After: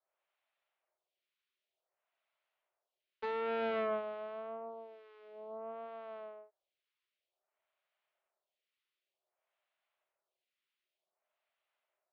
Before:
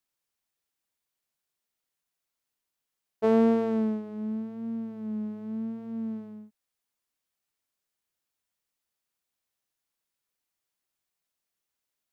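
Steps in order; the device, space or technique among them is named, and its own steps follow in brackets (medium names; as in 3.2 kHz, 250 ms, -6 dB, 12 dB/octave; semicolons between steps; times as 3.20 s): Chebyshev high-pass 360 Hz, order 8; vibe pedal into a guitar amplifier (lamp-driven phase shifter 0.54 Hz; valve stage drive 42 dB, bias 0.8; cabinet simulation 84–3400 Hz, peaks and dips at 120 Hz -5 dB, 180 Hz +6 dB, 260 Hz +6 dB, 440 Hz -8 dB, 620 Hz +8 dB, 1.7 kHz -3 dB); trim +12 dB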